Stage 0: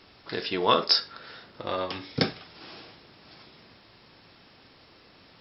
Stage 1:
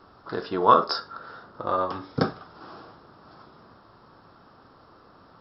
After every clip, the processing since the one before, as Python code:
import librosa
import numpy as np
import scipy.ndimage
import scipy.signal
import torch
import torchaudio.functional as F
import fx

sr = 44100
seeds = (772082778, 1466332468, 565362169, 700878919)

y = fx.high_shelf_res(x, sr, hz=1700.0, db=-9.5, q=3.0)
y = y * librosa.db_to_amplitude(2.0)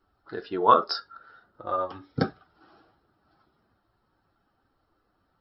y = fx.bin_expand(x, sr, power=1.5)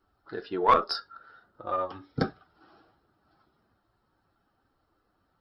y = fx.diode_clip(x, sr, knee_db=-10.5)
y = y * librosa.db_to_amplitude(-1.0)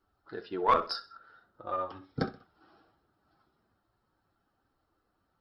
y = fx.echo_feedback(x, sr, ms=64, feedback_pct=35, wet_db=-16.5)
y = y * librosa.db_to_amplitude(-4.0)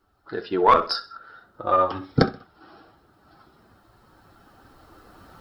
y = fx.recorder_agc(x, sr, target_db=-15.0, rise_db_per_s=5.8, max_gain_db=30)
y = y * librosa.db_to_amplitude(8.0)